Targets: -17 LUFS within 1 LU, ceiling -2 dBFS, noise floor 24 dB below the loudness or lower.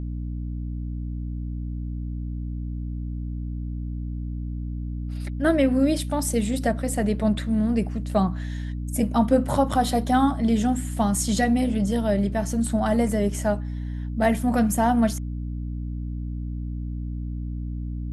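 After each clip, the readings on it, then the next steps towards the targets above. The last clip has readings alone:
hum 60 Hz; harmonics up to 300 Hz; hum level -28 dBFS; loudness -25.5 LUFS; peak -7.0 dBFS; loudness target -17.0 LUFS
-> notches 60/120/180/240/300 Hz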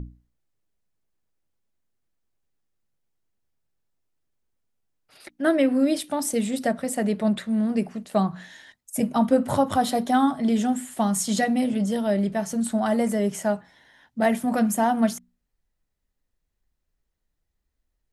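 hum none; loudness -24.0 LUFS; peak -8.0 dBFS; loudness target -17.0 LUFS
-> gain +7 dB; limiter -2 dBFS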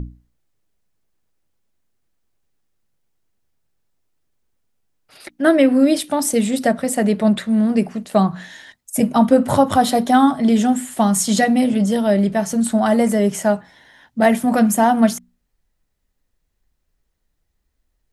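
loudness -17.0 LUFS; peak -2.0 dBFS; noise floor -71 dBFS

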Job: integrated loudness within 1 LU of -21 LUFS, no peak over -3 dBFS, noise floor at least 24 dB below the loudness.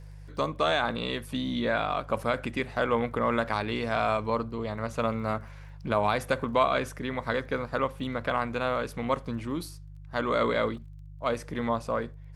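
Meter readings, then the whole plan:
ticks 24/s; hum 50 Hz; harmonics up to 150 Hz; hum level -43 dBFS; loudness -29.5 LUFS; peak -10.5 dBFS; loudness target -21.0 LUFS
-> de-click; de-hum 50 Hz, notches 3; gain +8.5 dB; limiter -3 dBFS

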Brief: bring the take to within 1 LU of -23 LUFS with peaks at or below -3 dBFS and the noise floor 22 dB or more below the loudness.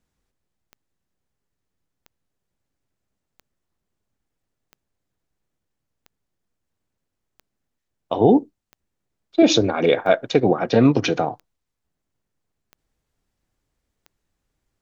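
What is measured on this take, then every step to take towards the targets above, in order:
clicks 11; loudness -18.5 LUFS; peak -3.0 dBFS; loudness target -23.0 LUFS
-> de-click; gain -4.5 dB

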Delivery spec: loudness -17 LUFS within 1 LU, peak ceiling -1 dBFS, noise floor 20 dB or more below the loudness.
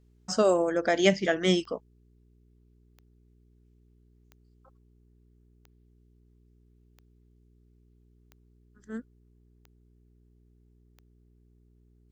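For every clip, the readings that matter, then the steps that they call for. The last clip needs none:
clicks 9; hum 60 Hz; harmonics up to 420 Hz; hum level -59 dBFS; loudness -26.5 LUFS; peak -7.5 dBFS; loudness target -17.0 LUFS
-> de-click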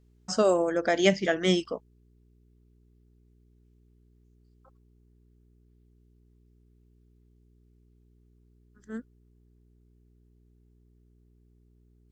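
clicks 0; hum 60 Hz; harmonics up to 420 Hz; hum level -59 dBFS
-> de-hum 60 Hz, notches 7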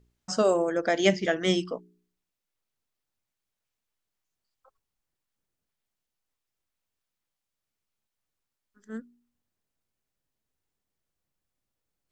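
hum none; loudness -25.5 LUFS; peak -7.5 dBFS; loudness target -17.0 LUFS
-> gain +8.5 dB; limiter -1 dBFS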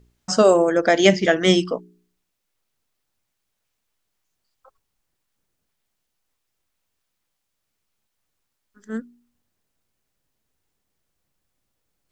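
loudness -17.5 LUFS; peak -1.0 dBFS; noise floor -78 dBFS

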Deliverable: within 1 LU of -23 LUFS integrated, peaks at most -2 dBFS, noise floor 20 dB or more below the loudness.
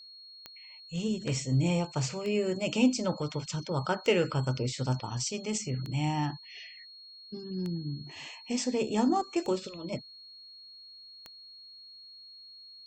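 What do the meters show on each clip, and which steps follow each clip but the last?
clicks 7; steady tone 4300 Hz; tone level -48 dBFS; loudness -31.0 LUFS; peak -12.5 dBFS; loudness target -23.0 LUFS
-> de-click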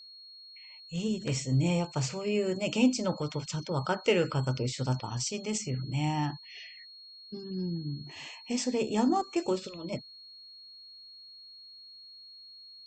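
clicks 0; steady tone 4300 Hz; tone level -48 dBFS
-> notch 4300 Hz, Q 30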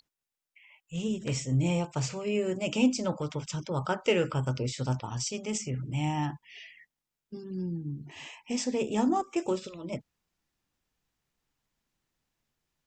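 steady tone none; loudness -31.0 LUFS; peak -12.5 dBFS; loudness target -23.0 LUFS
-> gain +8 dB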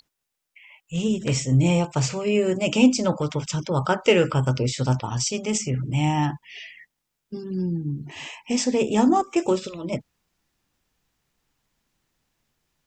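loudness -23.0 LUFS; peak -4.5 dBFS; noise floor -81 dBFS

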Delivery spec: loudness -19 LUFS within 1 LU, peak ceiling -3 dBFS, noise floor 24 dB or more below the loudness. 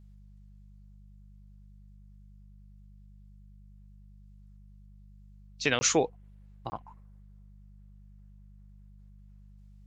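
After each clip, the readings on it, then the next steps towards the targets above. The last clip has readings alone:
dropouts 2; longest dropout 20 ms; hum 50 Hz; harmonics up to 200 Hz; hum level -51 dBFS; loudness -29.5 LUFS; peak -10.0 dBFS; loudness target -19.0 LUFS
-> interpolate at 5.79/6.7, 20 ms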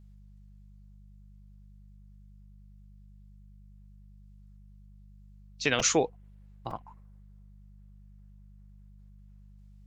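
dropouts 0; hum 50 Hz; harmonics up to 200 Hz; hum level -51 dBFS
-> de-hum 50 Hz, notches 4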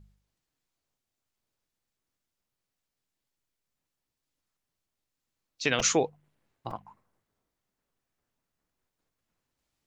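hum none; loudness -27.0 LUFS; peak -10.0 dBFS; loudness target -19.0 LUFS
-> gain +8 dB; limiter -3 dBFS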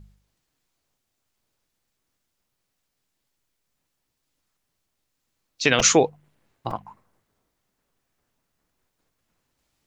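loudness -19.5 LUFS; peak -3.0 dBFS; noise floor -78 dBFS

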